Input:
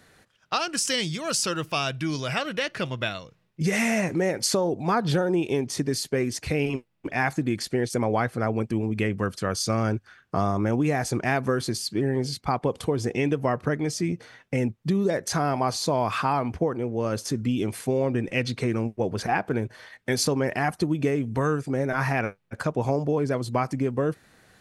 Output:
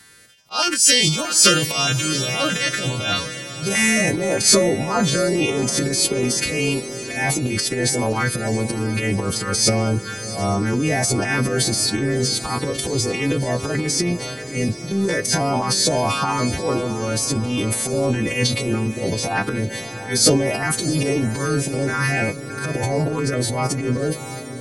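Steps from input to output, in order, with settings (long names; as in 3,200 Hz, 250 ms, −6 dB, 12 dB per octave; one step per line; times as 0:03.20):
every partial snapped to a pitch grid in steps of 2 semitones
transient designer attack −12 dB, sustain +10 dB
auto-filter notch saw up 1.6 Hz 530–2,200 Hz
feedback delay with all-pass diffusion 681 ms, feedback 59%, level −12 dB
level +4.5 dB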